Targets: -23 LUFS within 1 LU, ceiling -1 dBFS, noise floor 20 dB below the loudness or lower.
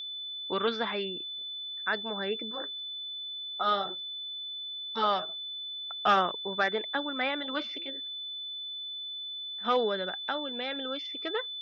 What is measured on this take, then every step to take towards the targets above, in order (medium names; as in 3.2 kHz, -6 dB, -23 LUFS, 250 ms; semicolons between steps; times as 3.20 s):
steady tone 3.5 kHz; tone level -36 dBFS; loudness -32.0 LUFS; peak level -14.5 dBFS; loudness target -23.0 LUFS
-> band-stop 3.5 kHz, Q 30; trim +9 dB